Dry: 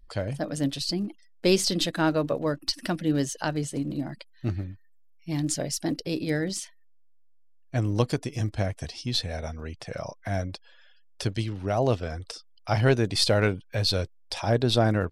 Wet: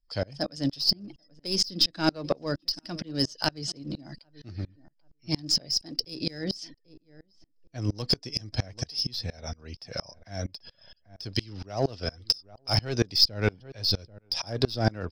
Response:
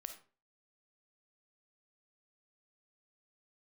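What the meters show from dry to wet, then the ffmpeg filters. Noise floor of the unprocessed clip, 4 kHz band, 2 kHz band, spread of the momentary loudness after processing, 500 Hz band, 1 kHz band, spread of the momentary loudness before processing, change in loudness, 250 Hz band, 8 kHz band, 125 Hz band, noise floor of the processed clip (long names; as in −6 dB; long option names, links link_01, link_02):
−54 dBFS, +4.0 dB, −5.0 dB, 16 LU, −6.0 dB, −5.0 dB, 14 LU, −1.0 dB, −5.0 dB, −4.5 dB, −5.0 dB, −68 dBFS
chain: -filter_complex "[0:a]lowpass=frequency=5100:width_type=q:width=15,acrossover=split=340[link_01][link_02];[link_02]acompressor=threshold=-18dB:ratio=4[link_03];[link_01][link_03]amix=inputs=2:normalize=0,asplit=2[link_04][link_05];[link_05]asoftclip=type=hard:threshold=-18dB,volume=-4.5dB[link_06];[link_04][link_06]amix=inputs=2:normalize=0,aeval=exprs='0.562*(cos(1*acos(clip(val(0)/0.562,-1,1)))-cos(1*PI/2))+0.0178*(cos(4*acos(clip(val(0)/0.562,-1,1)))-cos(4*PI/2))':channel_layout=same,asplit=2[link_07][link_08];[link_08]adelay=787,lowpass=frequency=1200:poles=1,volume=-22.5dB,asplit=2[link_09][link_10];[link_10]adelay=787,lowpass=frequency=1200:poles=1,volume=0.17[link_11];[link_09][link_11]amix=inputs=2:normalize=0[link_12];[link_07][link_12]amix=inputs=2:normalize=0,aeval=exprs='val(0)*pow(10,-29*if(lt(mod(-4.3*n/s,1),2*abs(-4.3)/1000),1-mod(-4.3*n/s,1)/(2*abs(-4.3)/1000),(mod(-4.3*n/s,1)-2*abs(-4.3)/1000)/(1-2*abs(-4.3)/1000))/20)':channel_layout=same"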